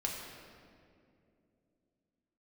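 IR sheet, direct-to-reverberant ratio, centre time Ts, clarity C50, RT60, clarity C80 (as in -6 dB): -2.0 dB, 86 ms, 2.0 dB, 2.6 s, 3.0 dB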